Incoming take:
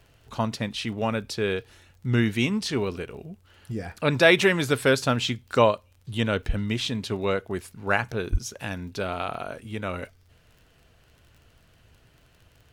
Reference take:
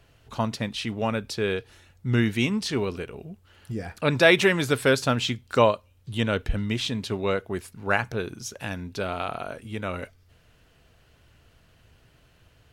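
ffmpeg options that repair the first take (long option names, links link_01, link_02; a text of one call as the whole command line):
ffmpeg -i in.wav -filter_complex "[0:a]adeclick=threshold=4,asplit=3[link_01][link_02][link_03];[link_01]afade=type=out:start_time=8.31:duration=0.02[link_04];[link_02]highpass=frequency=140:width=0.5412,highpass=frequency=140:width=1.3066,afade=type=in:start_time=8.31:duration=0.02,afade=type=out:start_time=8.43:duration=0.02[link_05];[link_03]afade=type=in:start_time=8.43:duration=0.02[link_06];[link_04][link_05][link_06]amix=inputs=3:normalize=0" out.wav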